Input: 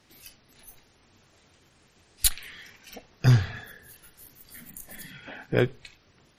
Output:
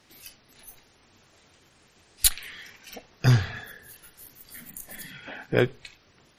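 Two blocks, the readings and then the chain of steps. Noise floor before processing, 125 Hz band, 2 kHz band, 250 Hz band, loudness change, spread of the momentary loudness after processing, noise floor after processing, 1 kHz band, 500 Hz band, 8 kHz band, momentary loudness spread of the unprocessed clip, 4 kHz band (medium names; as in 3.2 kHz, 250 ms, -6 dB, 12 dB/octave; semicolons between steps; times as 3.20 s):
-62 dBFS, -1.0 dB, +2.5 dB, +0.5 dB, -1.0 dB, 21 LU, -61 dBFS, +2.0 dB, +1.5 dB, +2.5 dB, 21 LU, +2.5 dB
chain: bass shelf 260 Hz -4 dB; trim +2.5 dB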